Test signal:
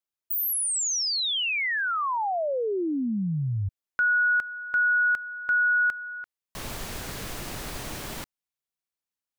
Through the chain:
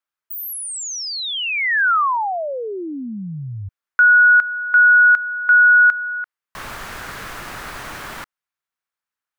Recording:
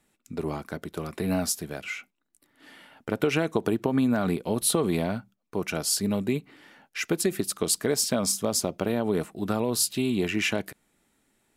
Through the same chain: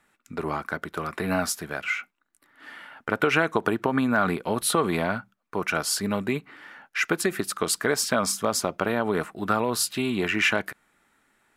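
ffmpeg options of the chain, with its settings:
ffmpeg -i in.wav -af "equalizer=frequency=1400:width_type=o:width=1.7:gain=13.5,volume=-2dB" out.wav

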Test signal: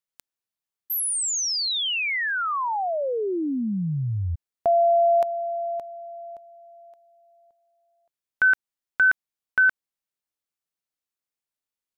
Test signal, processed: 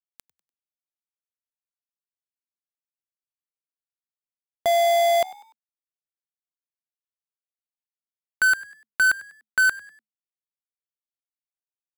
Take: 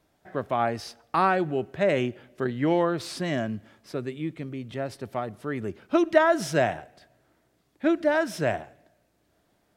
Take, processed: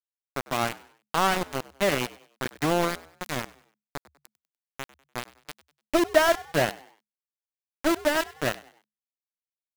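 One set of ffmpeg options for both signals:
ffmpeg -i in.wav -filter_complex "[0:a]aeval=exprs='val(0)*gte(abs(val(0)),0.0944)':channel_layout=same,asplit=4[link_01][link_02][link_03][link_04];[link_02]adelay=98,afreqshift=70,volume=-20dB[link_05];[link_03]adelay=196,afreqshift=140,volume=-28.6dB[link_06];[link_04]adelay=294,afreqshift=210,volume=-37.3dB[link_07];[link_01][link_05][link_06][link_07]amix=inputs=4:normalize=0" out.wav

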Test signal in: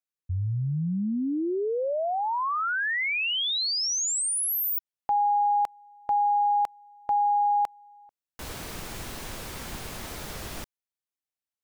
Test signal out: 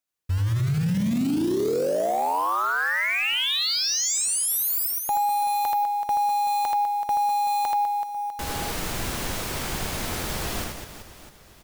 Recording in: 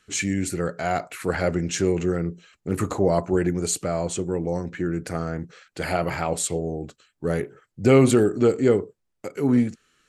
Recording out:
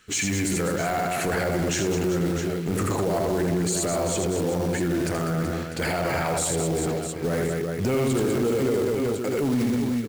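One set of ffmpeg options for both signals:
ffmpeg -i in.wav -af "acrusher=bits=4:mode=log:mix=0:aa=0.000001,aecho=1:1:80|200|380|650|1055:0.631|0.398|0.251|0.158|0.1,acompressor=threshold=-26dB:ratio=6:attack=0.27:release=27:knee=1:detection=peak,volume=6dB" out.wav

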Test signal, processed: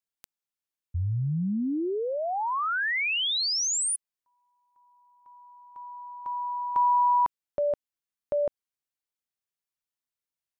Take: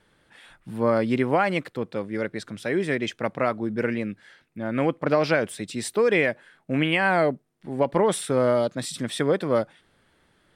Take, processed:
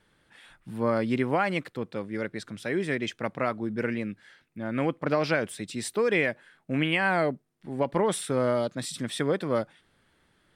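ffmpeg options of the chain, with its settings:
ffmpeg -i in.wav -af "equalizer=frequency=570:width=1:gain=-2.5,volume=-2.5dB" out.wav

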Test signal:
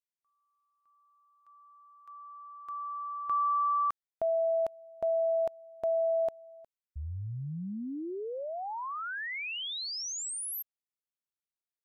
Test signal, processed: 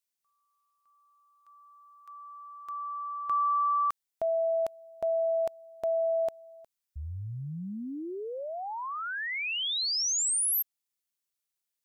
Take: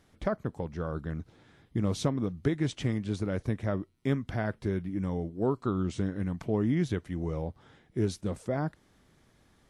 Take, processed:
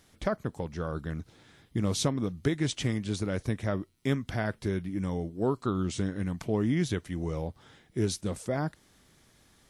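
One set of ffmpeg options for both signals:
ffmpeg -i in.wav -af "highshelf=frequency=2800:gain=10" out.wav

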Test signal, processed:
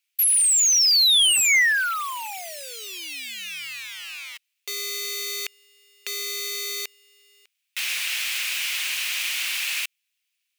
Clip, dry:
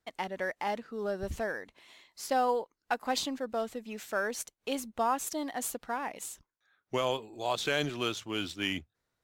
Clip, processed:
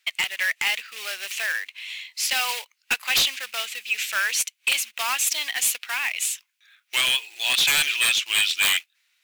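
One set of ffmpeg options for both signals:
ffmpeg -i in.wav -af "acrusher=bits=4:mode=log:mix=0:aa=0.000001,highpass=frequency=2500:width_type=q:width=3.4,aeval=exprs='0.422*sin(PI/2*8.91*val(0)/0.422)':channel_layout=same,volume=-7.5dB" out.wav

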